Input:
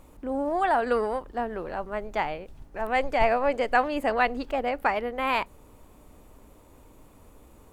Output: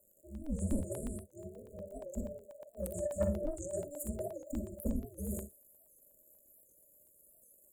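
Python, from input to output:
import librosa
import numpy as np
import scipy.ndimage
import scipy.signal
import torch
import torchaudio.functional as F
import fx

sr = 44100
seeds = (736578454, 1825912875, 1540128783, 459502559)

y = x * np.sin(2.0 * np.pi * 730.0 * np.arange(len(x)) / sr)
y = fx.peak_eq(y, sr, hz=94.0, db=-6.0, octaves=1.8, at=(1.7, 4.44))
y = fx.noise_reduce_blind(y, sr, reduce_db=20)
y = fx.tone_stack(y, sr, knobs='10-0-10')
y = fx.dmg_crackle(y, sr, seeds[0], per_s=140.0, level_db=-61.0)
y = scipy.signal.sosfilt(scipy.signal.butter(4, 65.0, 'highpass', fs=sr, output='sos'), y)
y = y * np.sin(2.0 * np.pi * 140.0 * np.arange(len(y)) / sr)
y = fx.brickwall_bandstop(y, sr, low_hz=650.0, high_hz=6700.0)
y = 10.0 ** (-38.5 / 20.0) * np.tanh(y / 10.0 ** (-38.5 / 20.0))
y = fx.room_early_taps(y, sr, ms=(44, 58), db=(-13.0, -9.0))
y = fx.buffer_crackle(y, sr, first_s=0.35, period_s=0.12, block=64, kind='zero')
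y = fx.record_warp(y, sr, rpm=78.0, depth_cents=160.0)
y = F.gain(torch.from_numpy(y), 17.0).numpy()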